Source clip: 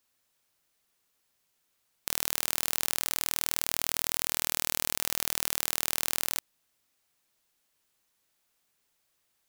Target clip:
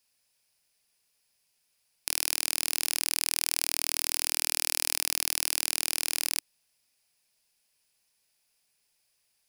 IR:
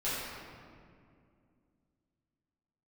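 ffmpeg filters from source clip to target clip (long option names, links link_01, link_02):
-af "equalizer=frequency=315:width_type=o:width=0.33:gain=-8,equalizer=frequency=1250:width_type=o:width=0.33:gain=-6,equalizer=frequency=2500:width_type=o:width=0.33:gain=6,equalizer=frequency=5000:width_type=o:width=0.33:gain=10,equalizer=frequency=10000:width_type=o:width=0.33:gain=9,volume=-2dB"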